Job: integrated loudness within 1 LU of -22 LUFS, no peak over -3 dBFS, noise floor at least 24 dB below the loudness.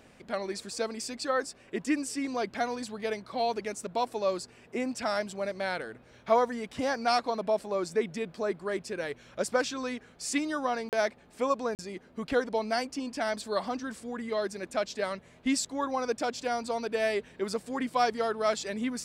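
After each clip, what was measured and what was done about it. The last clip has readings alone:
dropouts 2; longest dropout 38 ms; loudness -31.5 LUFS; peak level -11.5 dBFS; loudness target -22.0 LUFS
-> interpolate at 10.89/11.75 s, 38 ms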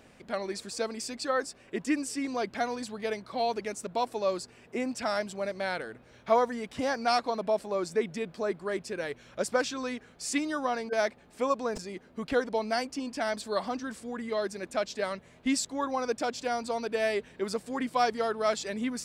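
dropouts 0; loudness -31.5 LUFS; peak level -11.5 dBFS; loudness target -22.0 LUFS
-> trim +9.5 dB; peak limiter -3 dBFS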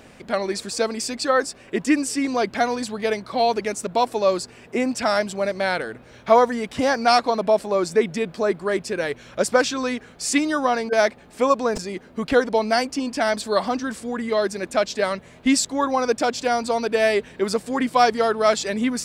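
loudness -22.0 LUFS; peak level -3.0 dBFS; noise floor -48 dBFS

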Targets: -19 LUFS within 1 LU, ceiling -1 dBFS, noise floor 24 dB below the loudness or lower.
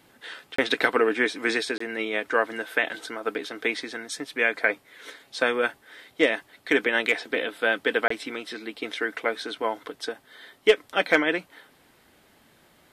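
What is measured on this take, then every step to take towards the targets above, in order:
dropouts 3; longest dropout 24 ms; loudness -26.0 LUFS; peak level -4.5 dBFS; loudness target -19.0 LUFS
-> interpolate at 0.56/1.78/8.08 s, 24 ms; trim +7 dB; peak limiter -1 dBFS

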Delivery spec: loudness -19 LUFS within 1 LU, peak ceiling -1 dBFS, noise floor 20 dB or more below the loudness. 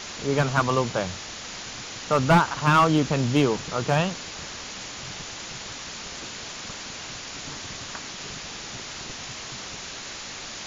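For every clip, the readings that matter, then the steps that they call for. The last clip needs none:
clipped samples 0.3%; clipping level -11.5 dBFS; noise floor -38 dBFS; noise floor target -47 dBFS; loudness -27.0 LUFS; peak level -11.5 dBFS; loudness target -19.0 LUFS
-> clip repair -11.5 dBFS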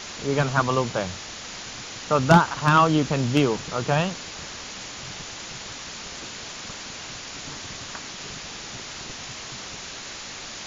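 clipped samples 0.0%; noise floor -38 dBFS; noise floor target -46 dBFS
-> noise reduction 8 dB, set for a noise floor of -38 dBFS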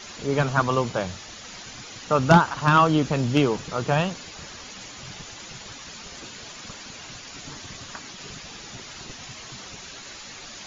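noise floor -42 dBFS; loudness -22.0 LUFS; peak level -2.5 dBFS; loudness target -19.0 LUFS
-> trim +3 dB; peak limiter -1 dBFS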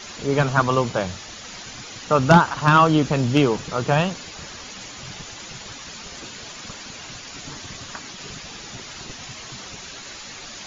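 loudness -19.0 LUFS; peak level -1.0 dBFS; noise floor -39 dBFS

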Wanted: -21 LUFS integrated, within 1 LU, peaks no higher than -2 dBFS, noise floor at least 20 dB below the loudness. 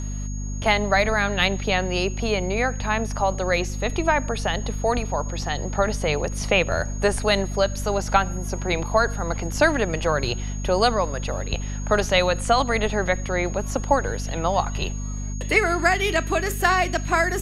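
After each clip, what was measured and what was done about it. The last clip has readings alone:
hum 50 Hz; highest harmonic 250 Hz; hum level -26 dBFS; steady tone 6.6 kHz; tone level -39 dBFS; loudness -23.0 LUFS; peak level -3.0 dBFS; loudness target -21.0 LUFS
-> de-hum 50 Hz, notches 5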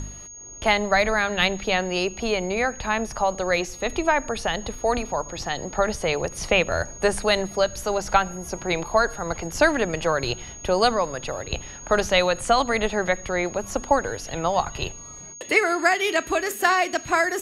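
hum not found; steady tone 6.6 kHz; tone level -39 dBFS
-> band-stop 6.6 kHz, Q 30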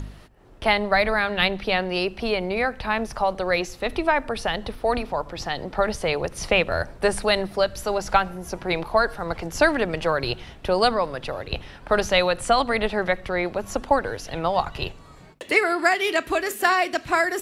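steady tone not found; loudness -23.5 LUFS; peak level -3.5 dBFS; loudness target -21.0 LUFS
-> trim +2.5 dB; peak limiter -2 dBFS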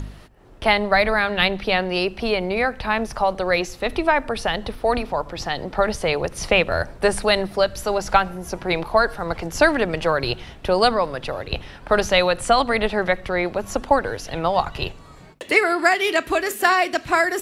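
loudness -21.0 LUFS; peak level -2.0 dBFS; noise floor -44 dBFS

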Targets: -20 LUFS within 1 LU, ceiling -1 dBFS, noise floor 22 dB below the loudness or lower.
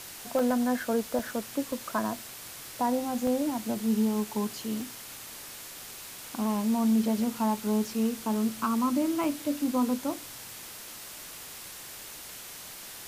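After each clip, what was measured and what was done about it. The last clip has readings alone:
dropouts 6; longest dropout 2.3 ms; noise floor -44 dBFS; noise floor target -52 dBFS; loudness -30.0 LUFS; peak level -16.5 dBFS; loudness target -20.0 LUFS
-> interpolate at 0.39/1.19/1.72/3.27/4.81/9.24 s, 2.3 ms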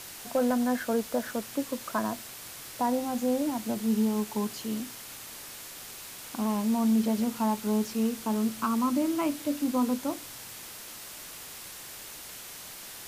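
dropouts 0; noise floor -44 dBFS; noise floor target -52 dBFS
-> noise reduction 8 dB, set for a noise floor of -44 dBFS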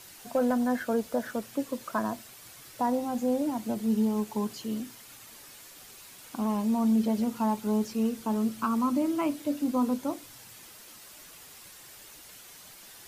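noise floor -50 dBFS; noise floor target -51 dBFS
-> noise reduction 6 dB, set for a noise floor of -50 dBFS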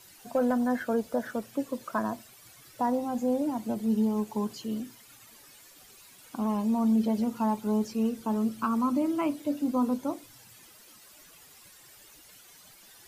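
noise floor -54 dBFS; loudness -29.5 LUFS; peak level -17.0 dBFS; loudness target -20.0 LUFS
-> trim +9.5 dB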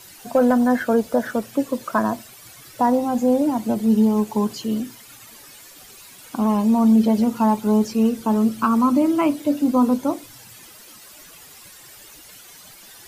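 loudness -20.0 LUFS; peak level -7.5 dBFS; noise floor -45 dBFS

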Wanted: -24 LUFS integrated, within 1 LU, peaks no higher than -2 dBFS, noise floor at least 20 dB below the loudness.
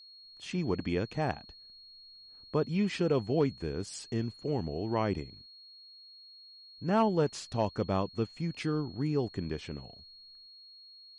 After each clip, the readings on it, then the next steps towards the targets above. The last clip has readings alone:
steady tone 4.3 kHz; tone level -51 dBFS; loudness -32.5 LUFS; peak level -17.0 dBFS; loudness target -24.0 LUFS
-> band-stop 4.3 kHz, Q 30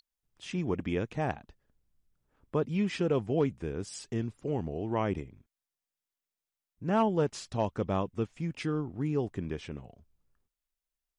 steady tone not found; loudness -32.5 LUFS; peak level -17.5 dBFS; loudness target -24.0 LUFS
-> trim +8.5 dB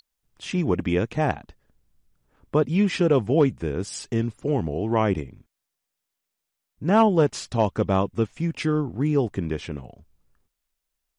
loudness -24.0 LUFS; peak level -9.0 dBFS; noise floor -83 dBFS

